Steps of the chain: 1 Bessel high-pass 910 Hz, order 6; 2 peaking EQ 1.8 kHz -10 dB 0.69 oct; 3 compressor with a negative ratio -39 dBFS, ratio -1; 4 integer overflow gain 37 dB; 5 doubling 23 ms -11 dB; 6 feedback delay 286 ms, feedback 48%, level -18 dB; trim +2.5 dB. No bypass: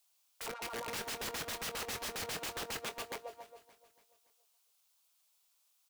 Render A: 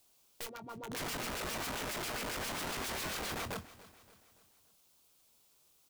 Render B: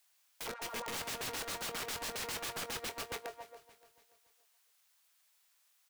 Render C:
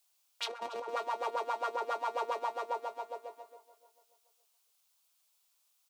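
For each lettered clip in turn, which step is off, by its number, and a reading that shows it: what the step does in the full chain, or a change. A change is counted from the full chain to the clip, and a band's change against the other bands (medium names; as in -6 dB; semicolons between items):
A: 1, crest factor change -2.0 dB; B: 2, momentary loudness spread change +2 LU; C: 4, crest factor change +5.5 dB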